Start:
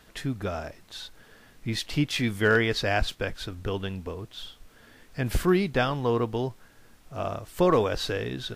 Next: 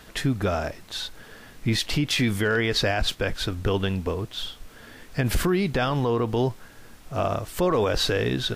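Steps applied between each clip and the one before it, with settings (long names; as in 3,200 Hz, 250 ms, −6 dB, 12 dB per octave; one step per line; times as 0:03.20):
brickwall limiter −22 dBFS, peak gain reduction 11 dB
level +8 dB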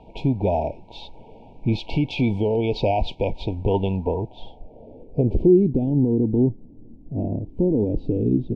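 brick-wall band-stop 970–2,200 Hz
dynamic equaliser 4,200 Hz, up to +8 dB, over −41 dBFS, Q 0.72
low-pass filter sweep 1,200 Hz → 280 Hz, 0:03.90–0:05.84
level +2.5 dB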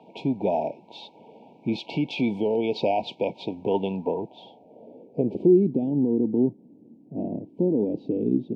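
high-pass filter 170 Hz 24 dB per octave
level −2 dB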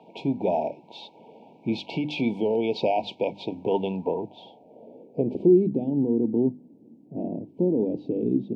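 mains-hum notches 50/100/150/200/250/300 Hz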